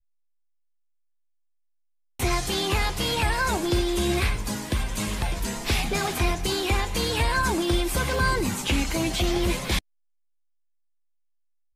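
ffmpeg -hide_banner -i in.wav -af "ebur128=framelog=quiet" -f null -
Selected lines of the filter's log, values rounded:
Integrated loudness:
  I:         -25.3 LUFS
  Threshold: -35.4 LUFS
Loudness range:
  LRA:         3.9 LU
  Threshold: -46.0 LUFS
  LRA low:   -28.5 LUFS
  LRA high:  -24.6 LUFS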